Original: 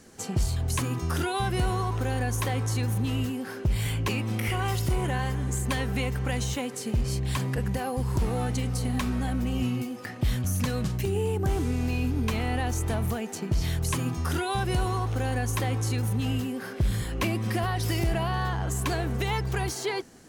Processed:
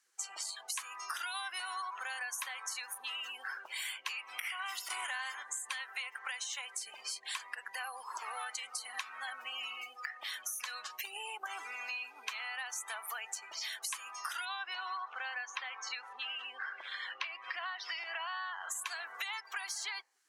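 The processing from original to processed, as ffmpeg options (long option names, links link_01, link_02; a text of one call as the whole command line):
ffmpeg -i in.wav -filter_complex "[0:a]asettb=1/sr,asplit=3[link_01][link_02][link_03];[link_01]atrim=end=4.904[link_04];[link_02]atrim=start=4.9:end=5.43,asetpts=PTS-STARTPTS,afade=type=in:duration=0.004:curve=qsin,afade=type=out:start_time=0.526:duration=0.004:curve=qsin,acontrast=83[link_05];[link_03]atrim=start=5.426[link_06];[link_04][link_05]acrossfade=duration=0.004:curve1=hsin:curve2=qsin[link_07];[link_07][link_06]acrossfade=duration=0.004:curve1=qsin:curve2=hsin,asettb=1/sr,asplit=3[link_08][link_09][link_10];[link_08]atrim=end=14.454[link_11];[link_09]atrim=start=14.45:end=18.53,asetpts=PTS-STARTPTS,afade=type=in:duration=0.004:curve=qsin,afade=type=out:start_time=4.076:duration=0.004:curve=qsin,highpass=170,lowpass=4600[link_12];[link_10]atrim=start=18.526[link_13];[link_11][link_12]acrossfade=duration=0.004:curve1=hsin:curve2=qsin[link_14];[link_14][link_13]acrossfade=duration=0.004:curve1=qsin:curve2=hsin,afftdn=noise_reduction=24:noise_floor=-43,highpass=frequency=1100:width=0.5412,highpass=frequency=1100:width=1.3066,acompressor=threshold=-44dB:ratio=6,volume=6.5dB" out.wav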